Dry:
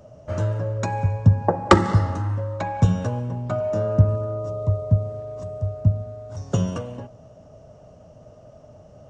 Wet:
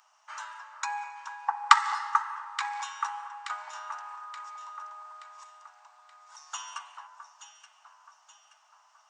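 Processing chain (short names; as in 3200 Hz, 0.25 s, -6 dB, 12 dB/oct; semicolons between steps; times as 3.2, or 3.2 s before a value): steep high-pass 860 Hz 72 dB/oct; on a send: echo with dull and thin repeats by turns 0.438 s, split 1600 Hz, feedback 66%, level -7 dB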